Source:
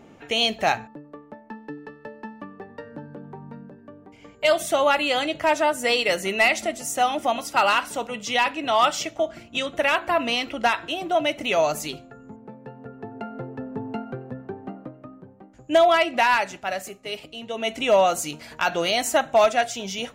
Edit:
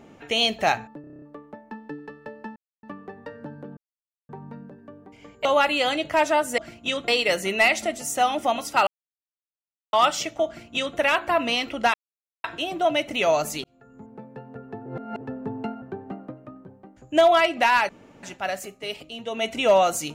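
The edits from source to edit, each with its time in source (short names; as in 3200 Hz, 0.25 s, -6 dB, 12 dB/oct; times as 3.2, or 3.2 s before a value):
1.01 stutter 0.03 s, 8 plays
2.35 insert silence 0.27 s
3.29 insert silence 0.52 s
4.45–4.75 cut
7.67–8.73 mute
9.27–9.77 copy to 5.88
10.74 insert silence 0.50 s
11.94–12.43 fade in
13.16–13.51 reverse
14.12–14.39 cut
16.46 insert room tone 0.34 s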